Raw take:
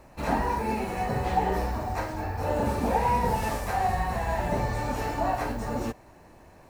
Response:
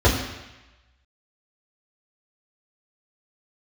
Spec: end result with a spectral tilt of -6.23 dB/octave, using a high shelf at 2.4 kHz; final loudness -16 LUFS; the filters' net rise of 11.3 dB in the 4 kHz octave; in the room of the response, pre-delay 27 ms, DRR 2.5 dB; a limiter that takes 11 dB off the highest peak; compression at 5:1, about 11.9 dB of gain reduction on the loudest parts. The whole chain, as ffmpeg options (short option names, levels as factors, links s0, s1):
-filter_complex "[0:a]highshelf=f=2400:g=6,equalizer=f=4000:t=o:g=8.5,acompressor=threshold=0.0224:ratio=5,alimiter=level_in=2.99:limit=0.0631:level=0:latency=1,volume=0.335,asplit=2[s0][s1];[1:a]atrim=start_sample=2205,adelay=27[s2];[s1][s2]afir=irnorm=-1:irlink=0,volume=0.0708[s3];[s0][s3]amix=inputs=2:normalize=0,volume=8.41"